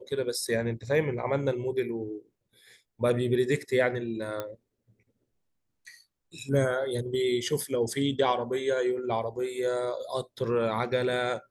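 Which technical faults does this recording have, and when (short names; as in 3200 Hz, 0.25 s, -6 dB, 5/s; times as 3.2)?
4.4 pop -19 dBFS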